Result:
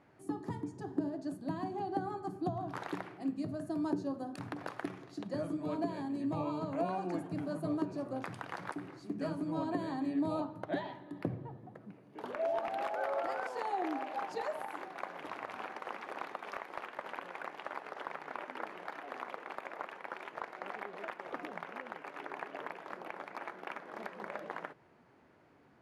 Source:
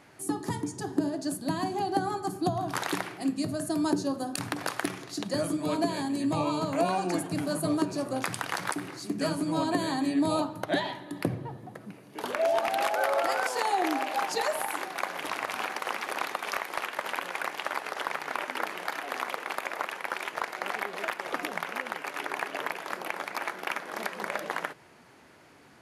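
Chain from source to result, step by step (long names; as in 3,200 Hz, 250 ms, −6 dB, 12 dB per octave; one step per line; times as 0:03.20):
low-pass filter 1,100 Hz 6 dB per octave
level −6.5 dB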